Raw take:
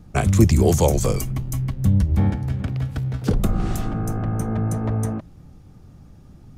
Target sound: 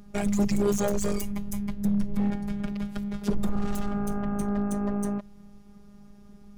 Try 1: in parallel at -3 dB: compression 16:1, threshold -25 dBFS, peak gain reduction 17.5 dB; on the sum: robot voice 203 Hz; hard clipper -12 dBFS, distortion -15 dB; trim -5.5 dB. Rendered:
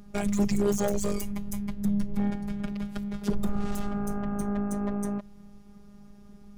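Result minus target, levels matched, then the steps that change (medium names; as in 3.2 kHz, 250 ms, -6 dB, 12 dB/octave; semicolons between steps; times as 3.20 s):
compression: peak gain reduction +8 dB
change: compression 16:1, threshold -16.5 dBFS, peak gain reduction 9.5 dB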